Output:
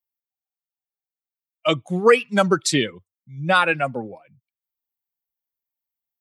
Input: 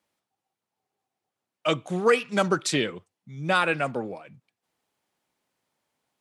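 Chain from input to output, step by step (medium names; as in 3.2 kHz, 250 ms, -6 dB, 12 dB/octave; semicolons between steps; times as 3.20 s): expander on every frequency bin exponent 1.5; trim +7 dB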